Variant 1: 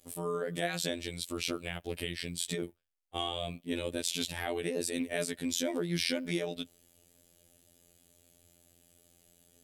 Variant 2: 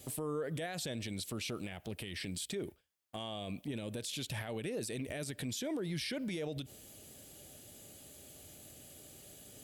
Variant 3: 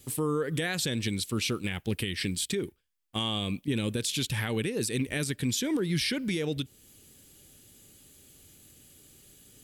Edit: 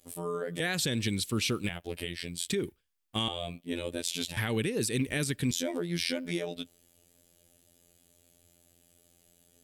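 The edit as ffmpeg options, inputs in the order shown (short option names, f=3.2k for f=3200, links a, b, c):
-filter_complex "[2:a]asplit=3[a][b][c];[0:a]asplit=4[d][e][f][g];[d]atrim=end=0.602[h];[a]atrim=start=0.598:end=1.692[i];[e]atrim=start=1.688:end=2.482[j];[b]atrim=start=2.478:end=3.282[k];[f]atrim=start=3.278:end=4.372[l];[c]atrim=start=4.368:end=5.512[m];[g]atrim=start=5.508[n];[h][i]acrossfade=d=0.004:c1=hsin:c2=hsin[o];[o][j]acrossfade=d=0.004:c1=hsin:c2=hsin[p];[p][k]acrossfade=d=0.004:c1=hsin:c2=hsin[q];[q][l]acrossfade=d=0.004:c1=hsin:c2=hsin[r];[r][m]acrossfade=d=0.004:c1=hsin:c2=hsin[s];[s][n]acrossfade=d=0.004:c1=hsin:c2=hsin"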